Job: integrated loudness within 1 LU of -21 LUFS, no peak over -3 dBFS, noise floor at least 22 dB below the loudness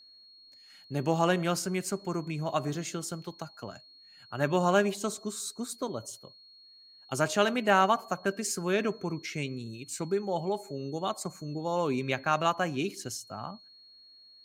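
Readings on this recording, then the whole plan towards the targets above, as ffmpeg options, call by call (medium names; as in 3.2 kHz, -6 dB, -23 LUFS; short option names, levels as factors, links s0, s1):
steady tone 4.3 kHz; tone level -53 dBFS; loudness -30.5 LUFS; peak level -9.0 dBFS; loudness target -21.0 LUFS
-> -af "bandreject=f=4300:w=30"
-af "volume=2.99,alimiter=limit=0.708:level=0:latency=1"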